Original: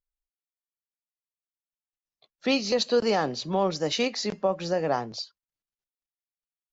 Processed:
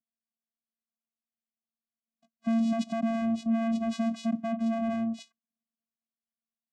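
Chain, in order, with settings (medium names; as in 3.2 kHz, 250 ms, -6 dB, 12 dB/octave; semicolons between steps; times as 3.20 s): tilt shelf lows +5.5 dB, about 700 Hz; hard clipper -28 dBFS, distortion -5 dB; vocoder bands 4, square 227 Hz; trim +3.5 dB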